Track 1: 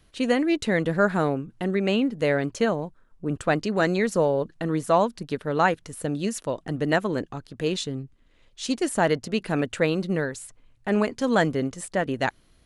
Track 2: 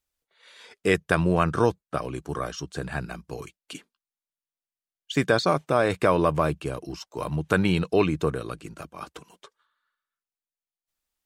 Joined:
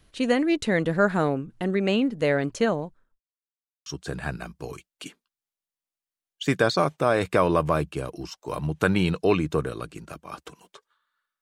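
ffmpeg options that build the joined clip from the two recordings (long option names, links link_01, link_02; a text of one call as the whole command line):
ffmpeg -i cue0.wav -i cue1.wav -filter_complex "[0:a]apad=whole_dur=11.41,atrim=end=11.41,asplit=2[link_01][link_02];[link_01]atrim=end=3.2,asetpts=PTS-STARTPTS,afade=type=out:start_time=2.77:duration=0.43[link_03];[link_02]atrim=start=3.2:end=3.86,asetpts=PTS-STARTPTS,volume=0[link_04];[1:a]atrim=start=2.55:end=10.1,asetpts=PTS-STARTPTS,afade=type=in:duration=0.004:curve=hsin[link_05];[link_03][link_04][link_05]concat=n=3:v=0:a=1" out.wav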